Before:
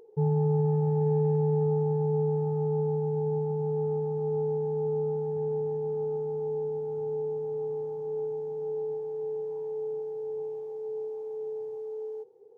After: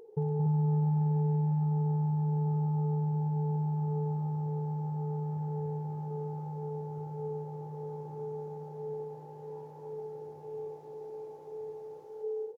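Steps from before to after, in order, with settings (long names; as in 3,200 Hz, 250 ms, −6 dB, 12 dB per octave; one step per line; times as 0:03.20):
downward compressor, threshold −30 dBFS, peak gain reduction 8 dB
on a send: loudspeakers that aren't time-aligned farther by 77 metres −4 dB, 99 metres −5 dB
on the sum: level +1.5 dB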